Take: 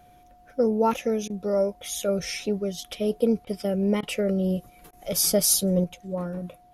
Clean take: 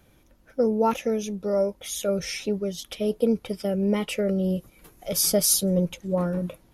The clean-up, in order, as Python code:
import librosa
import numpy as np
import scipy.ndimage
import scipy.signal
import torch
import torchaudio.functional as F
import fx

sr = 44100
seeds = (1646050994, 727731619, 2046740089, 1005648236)

y = fx.notch(x, sr, hz=720.0, q=30.0)
y = fx.fix_interpolate(y, sr, at_s=(1.28, 3.45, 4.01, 4.91), length_ms=18.0)
y = fx.fix_level(y, sr, at_s=5.84, step_db=5.5)